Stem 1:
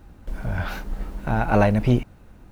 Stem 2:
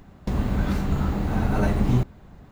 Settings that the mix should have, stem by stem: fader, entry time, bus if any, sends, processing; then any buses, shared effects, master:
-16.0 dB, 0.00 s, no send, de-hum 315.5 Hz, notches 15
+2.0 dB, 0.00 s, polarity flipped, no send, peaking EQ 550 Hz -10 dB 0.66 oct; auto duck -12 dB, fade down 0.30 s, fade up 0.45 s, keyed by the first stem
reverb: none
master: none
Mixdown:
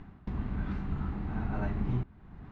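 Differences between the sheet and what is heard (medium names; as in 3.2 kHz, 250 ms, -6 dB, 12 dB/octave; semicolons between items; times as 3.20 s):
stem 1 -16.0 dB -> -25.5 dB; master: extra low-pass 2.4 kHz 12 dB/octave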